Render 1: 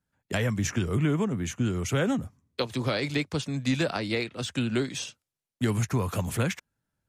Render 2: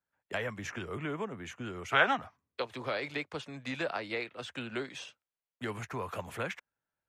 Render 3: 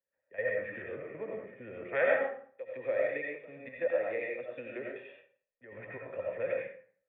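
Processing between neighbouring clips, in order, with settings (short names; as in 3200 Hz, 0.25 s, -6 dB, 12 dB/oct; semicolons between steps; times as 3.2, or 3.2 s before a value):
spectral gain 1.92–2.36, 610–6300 Hz +12 dB; three-band isolator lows -14 dB, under 420 Hz, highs -13 dB, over 3100 Hz; gain -3 dB
vocal tract filter e; step gate "xx.xxxxx." 118 bpm -12 dB; digital reverb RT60 0.51 s, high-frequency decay 0.7×, pre-delay 50 ms, DRR -2 dB; gain +8 dB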